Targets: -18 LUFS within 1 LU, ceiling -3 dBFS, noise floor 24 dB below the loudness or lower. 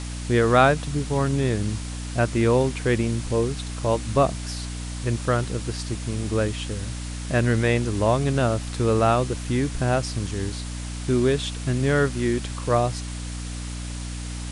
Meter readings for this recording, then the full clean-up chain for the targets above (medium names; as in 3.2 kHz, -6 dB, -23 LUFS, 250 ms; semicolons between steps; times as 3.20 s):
hum 60 Hz; highest harmonic 300 Hz; hum level -30 dBFS; noise floor -32 dBFS; noise floor target -48 dBFS; loudness -24.0 LUFS; peak level -5.0 dBFS; loudness target -18.0 LUFS
-> hum notches 60/120/180/240/300 Hz; noise reduction 16 dB, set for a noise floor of -32 dBFS; trim +6 dB; peak limiter -3 dBFS